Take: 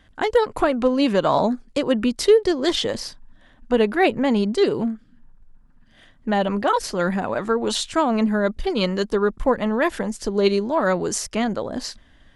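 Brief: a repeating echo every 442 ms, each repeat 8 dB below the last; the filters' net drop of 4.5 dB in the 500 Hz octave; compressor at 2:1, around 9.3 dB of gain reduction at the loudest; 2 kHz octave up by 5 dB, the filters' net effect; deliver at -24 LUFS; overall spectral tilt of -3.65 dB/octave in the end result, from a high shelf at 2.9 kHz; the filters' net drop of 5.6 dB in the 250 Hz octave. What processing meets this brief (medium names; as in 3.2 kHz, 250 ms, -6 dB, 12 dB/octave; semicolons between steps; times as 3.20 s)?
peaking EQ 250 Hz -6 dB; peaking EQ 500 Hz -4 dB; peaking EQ 2 kHz +8 dB; treble shelf 2.9 kHz -4 dB; compression 2:1, threshold -32 dBFS; feedback delay 442 ms, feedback 40%, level -8 dB; trim +6.5 dB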